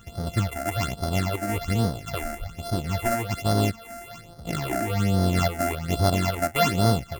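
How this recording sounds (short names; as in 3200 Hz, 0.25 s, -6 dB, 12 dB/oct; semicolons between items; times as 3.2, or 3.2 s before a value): a buzz of ramps at a fixed pitch in blocks of 64 samples; phasing stages 8, 1.2 Hz, lowest notch 130–2500 Hz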